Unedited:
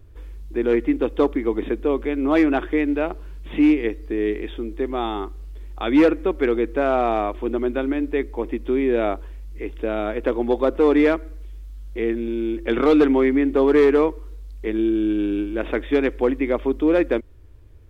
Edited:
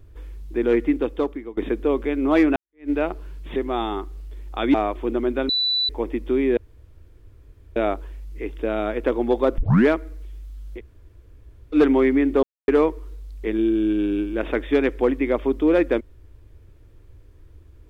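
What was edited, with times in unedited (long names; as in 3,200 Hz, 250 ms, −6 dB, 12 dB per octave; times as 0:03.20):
0:00.89–0:01.57: fade out, to −19.5 dB
0:02.56–0:02.90: fade in exponential
0:03.56–0:04.80: remove
0:05.98–0:07.13: remove
0:07.88–0:08.28: beep over 3,970 Hz −18.5 dBFS
0:08.96: splice in room tone 1.19 s
0:10.78: tape start 0.30 s
0:11.98–0:12.95: fill with room tone, crossfade 0.06 s
0:13.63–0:13.88: silence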